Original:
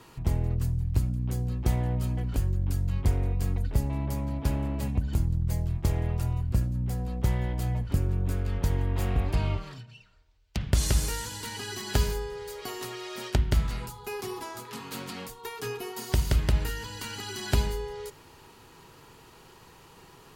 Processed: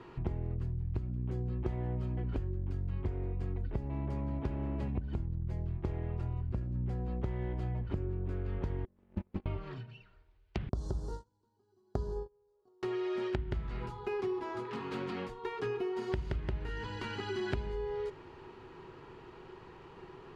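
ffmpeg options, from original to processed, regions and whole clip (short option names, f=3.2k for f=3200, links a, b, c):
-filter_complex "[0:a]asettb=1/sr,asplit=3[a][b][c];[a]atrim=end=8.854[d];[b]atrim=start=8.85:end=9.46,asetpts=PTS-STARTPTS,afade=t=in:d=0.004:c=qsin,afade=t=out:st=0.606:d=0.004:c=qsin,aeval=exprs='val(0)*sin(2*PI*140*n/s)':c=same,agate=range=-38dB:threshold=-25dB:ratio=16:release=100:detection=peak,acrusher=bits=6:mode=log:mix=0:aa=0.000001[e];[c]atrim=start=9.456[f];[d][e]acrossfade=d=0.004:c1=hsin:c2=qsin[g];[g][f]acrossfade=d=0.004:c1=qsin:c2=hsin,asettb=1/sr,asplit=3[h][i][j];[h]atrim=end=10.694[k];[i]atrim=start=10.69:end=12.83,asetpts=PTS-STARTPTS,afade=t=in:d=0.004:c=qsin,afade=t=out:st=2.136:d=0.004:c=qsin,agate=range=-35dB:threshold=-32dB:ratio=16:release=100:detection=peak,asuperstop=centerf=2300:order=4:qfactor=0.61[l];[j]atrim=start=12.826[m];[k][l]acrossfade=d=0.004:c1=hsin:c2=qsin[n];[n][m]acrossfade=d=0.004:c1=qsin:c2=hsin,lowpass=2.4k,equalizer=f=370:w=5.8:g=10,acompressor=threshold=-32dB:ratio=6"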